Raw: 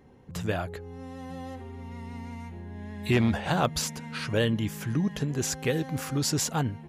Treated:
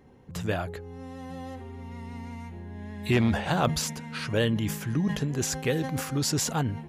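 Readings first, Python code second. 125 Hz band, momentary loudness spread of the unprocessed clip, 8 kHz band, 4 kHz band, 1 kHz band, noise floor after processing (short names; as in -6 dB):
+0.5 dB, 15 LU, +0.5 dB, +0.5 dB, +0.5 dB, -42 dBFS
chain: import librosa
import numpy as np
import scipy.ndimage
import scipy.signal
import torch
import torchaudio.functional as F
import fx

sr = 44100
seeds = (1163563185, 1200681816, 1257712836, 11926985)

y = fx.sustainer(x, sr, db_per_s=86.0)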